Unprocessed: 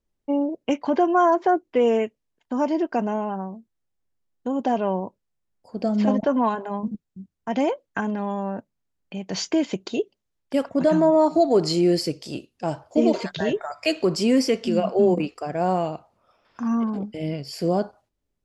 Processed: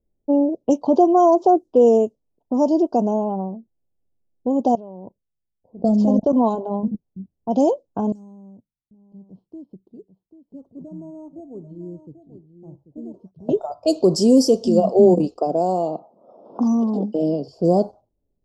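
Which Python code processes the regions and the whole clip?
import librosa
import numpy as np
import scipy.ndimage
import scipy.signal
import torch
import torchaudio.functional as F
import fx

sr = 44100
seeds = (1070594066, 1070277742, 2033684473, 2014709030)

y = fx.chain(x, sr, fx.low_shelf(hz=200.0, db=6.0),
    fx.level_steps(step_db=21), at=(4.75, 6.33))
y = fx.chain(y, sr, fx.resample_bad(factor=6, down='filtered', up='hold'),
    fx.tone_stack(knobs='6-0-2'),
    fx.echo_single(ms=789, db=-11.0), at=(8.12, 13.49))
y = fx.chain(y, sr, fx.highpass(hz=200.0, slope=24),
    fx.band_squash(depth_pct=100), at=(15.38, 17.48))
y = scipy.signal.sosfilt(scipy.signal.cheby1(2, 1.0, [690.0, 5200.0], 'bandstop', fs=sr, output='sos'), y)
y = fx.env_lowpass(y, sr, base_hz=670.0, full_db=-19.5)
y = fx.peak_eq(y, sr, hz=4400.0, db=-2.5, octaves=0.29)
y = F.gain(torch.from_numpy(y), 6.0).numpy()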